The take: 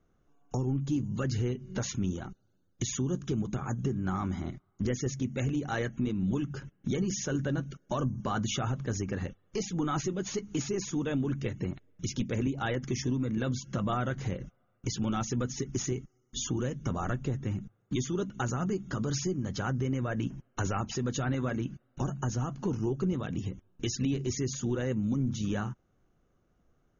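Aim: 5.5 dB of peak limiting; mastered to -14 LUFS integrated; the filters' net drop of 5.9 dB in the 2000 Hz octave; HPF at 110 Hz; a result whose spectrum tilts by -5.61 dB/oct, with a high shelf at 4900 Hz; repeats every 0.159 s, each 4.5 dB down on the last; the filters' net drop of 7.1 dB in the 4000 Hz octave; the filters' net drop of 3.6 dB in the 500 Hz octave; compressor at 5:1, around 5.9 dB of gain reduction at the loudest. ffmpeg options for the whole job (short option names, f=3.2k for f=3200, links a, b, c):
-af "highpass=110,equalizer=f=500:t=o:g=-4.5,equalizer=f=2k:t=o:g=-6.5,equalizer=f=4k:t=o:g=-5.5,highshelf=f=4.9k:g=-4,acompressor=threshold=-34dB:ratio=5,alimiter=level_in=6dB:limit=-24dB:level=0:latency=1,volume=-6dB,aecho=1:1:159|318|477|636|795|954|1113|1272|1431:0.596|0.357|0.214|0.129|0.0772|0.0463|0.0278|0.0167|0.01,volume=24.5dB"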